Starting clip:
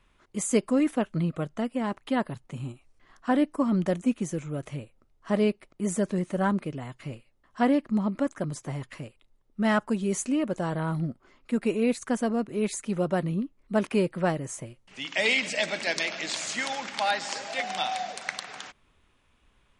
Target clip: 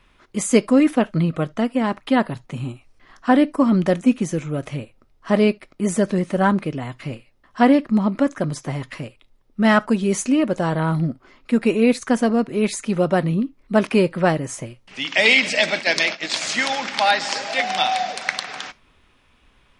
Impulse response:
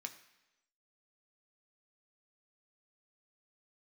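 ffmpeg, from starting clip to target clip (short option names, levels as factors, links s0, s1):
-filter_complex "[0:a]asplit=3[s0][s1][s2];[s0]afade=t=out:st=15.62:d=0.02[s3];[s1]agate=range=0.141:threshold=0.0251:ratio=16:detection=peak,afade=t=in:st=15.62:d=0.02,afade=t=out:st=16.4:d=0.02[s4];[s2]afade=t=in:st=16.4:d=0.02[s5];[s3][s4][s5]amix=inputs=3:normalize=0,asplit=2[s6][s7];[s7]lowpass=f=5700:t=q:w=1.7[s8];[1:a]atrim=start_sample=2205,atrim=end_sample=3528[s9];[s8][s9]afir=irnorm=-1:irlink=0,volume=0.531[s10];[s6][s10]amix=inputs=2:normalize=0,volume=2.11"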